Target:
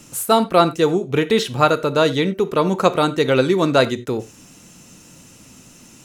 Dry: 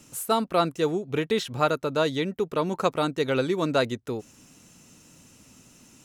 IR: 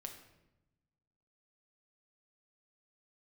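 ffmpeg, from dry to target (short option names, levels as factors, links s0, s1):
-filter_complex "[0:a]asplit=2[s0][s1];[1:a]atrim=start_sample=2205,atrim=end_sample=4410[s2];[s1][s2]afir=irnorm=-1:irlink=0,volume=1.26[s3];[s0][s3]amix=inputs=2:normalize=0,volume=1.5"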